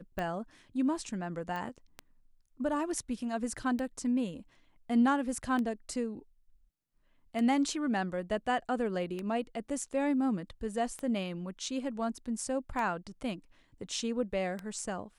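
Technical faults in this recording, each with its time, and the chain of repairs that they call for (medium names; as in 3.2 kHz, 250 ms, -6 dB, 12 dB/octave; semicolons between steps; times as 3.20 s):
tick 33 1/3 rpm -23 dBFS
1.56 s: pop -26 dBFS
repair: de-click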